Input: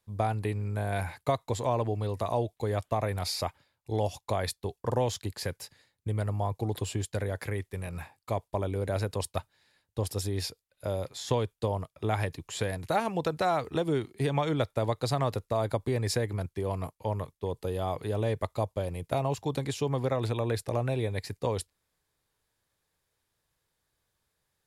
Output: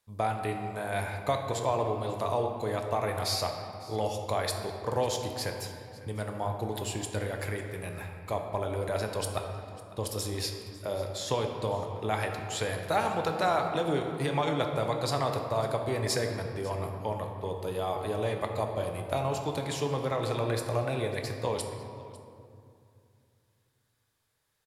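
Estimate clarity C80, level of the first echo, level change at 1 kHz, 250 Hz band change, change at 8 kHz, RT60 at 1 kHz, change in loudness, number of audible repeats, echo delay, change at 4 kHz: 6.0 dB, -19.0 dB, +2.0 dB, -1.5 dB, +2.0 dB, 2.4 s, 0.0 dB, 1, 550 ms, +2.5 dB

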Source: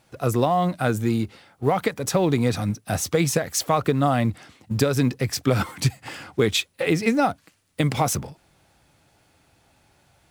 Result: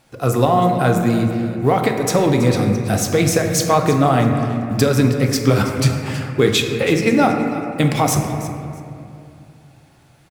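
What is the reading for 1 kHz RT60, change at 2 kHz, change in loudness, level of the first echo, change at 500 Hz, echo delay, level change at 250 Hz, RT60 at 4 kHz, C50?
2.3 s, +5.5 dB, +6.0 dB, -16.0 dB, +6.5 dB, 326 ms, +7.0 dB, 1.4 s, 4.0 dB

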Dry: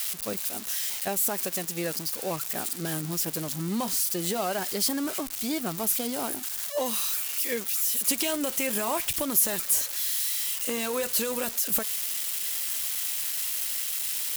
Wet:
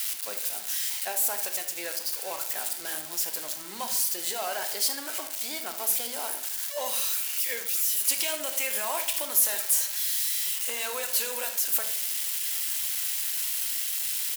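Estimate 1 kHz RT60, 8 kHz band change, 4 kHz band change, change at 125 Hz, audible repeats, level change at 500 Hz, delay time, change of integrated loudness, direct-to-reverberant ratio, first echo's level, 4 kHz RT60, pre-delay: 0.60 s, +0.5 dB, +1.0 dB, under -20 dB, 1, -5.5 dB, 76 ms, 0.0 dB, 6.0 dB, -13.5 dB, 0.50 s, 18 ms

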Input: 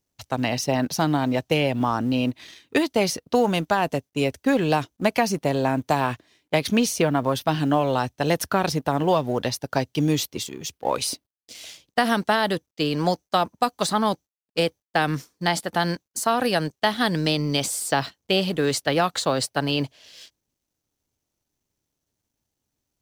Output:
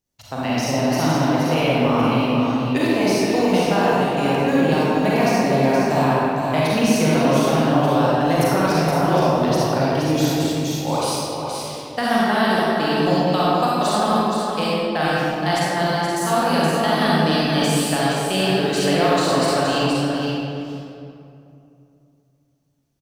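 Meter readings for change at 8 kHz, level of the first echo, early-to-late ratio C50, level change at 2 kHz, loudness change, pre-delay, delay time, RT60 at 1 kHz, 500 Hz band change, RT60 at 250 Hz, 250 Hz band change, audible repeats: +1.5 dB, -5.5 dB, -7.0 dB, +4.0 dB, +4.5 dB, 34 ms, 472 ms, 2.5 s, +5.0 dB, 3.3 s, +6.0 dB, 1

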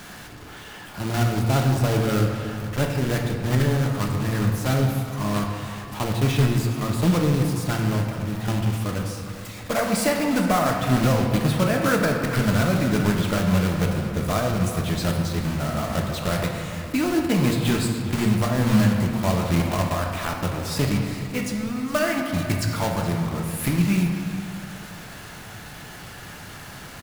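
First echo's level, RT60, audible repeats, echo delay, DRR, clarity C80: -15.5 dB, 2.2 s, 1, 417 ms, 1.0 dB, 4.5 dB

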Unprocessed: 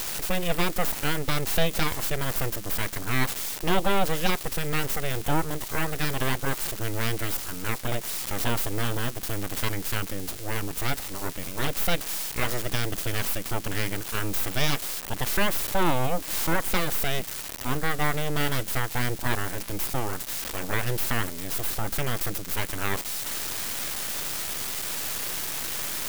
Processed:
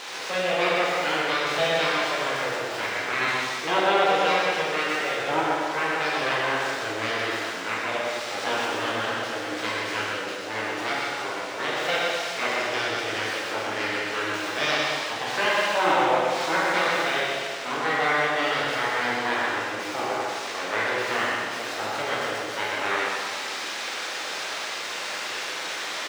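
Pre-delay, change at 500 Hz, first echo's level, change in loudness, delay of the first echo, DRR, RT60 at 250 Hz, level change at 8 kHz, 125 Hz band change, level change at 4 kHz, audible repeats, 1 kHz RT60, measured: 6 ms, +6.0 dB, -4.0 dB, +3.0 dB, 123 ms, -7.5 dB, 1.9 s, -5.5 dB, -12.0 dB, +4.0 dB, 1, 1.8 s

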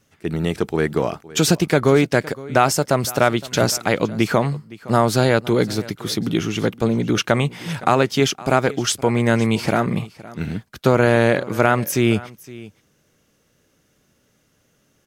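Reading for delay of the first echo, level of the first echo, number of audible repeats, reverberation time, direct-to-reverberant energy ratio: 514 ms, -19.5 dB, 1, no reverb, no reverb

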